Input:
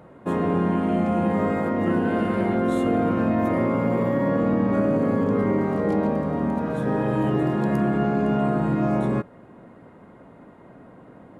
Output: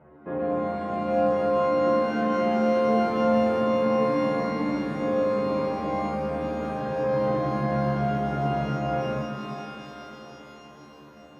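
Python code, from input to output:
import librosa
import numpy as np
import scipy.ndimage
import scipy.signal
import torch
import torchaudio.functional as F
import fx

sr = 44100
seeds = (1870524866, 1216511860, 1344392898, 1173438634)

y = scipy.signal.sosfilt(scipy.signal.butter(4, 2400.0, 'lowpass', fs=sr, output='sos'), x)
y = fx.stiff_resonator(y, sr, f0_hz=72.0, decay_s=0.59, stiffness=0.002)
y = fx.rev_shimmer(y, sr, seeds[0], rt60_s=3.7, semitones=12, shimmer_db=-8, drr_db=4.0)
y = y * librosa.db_to_amplitude(6.5)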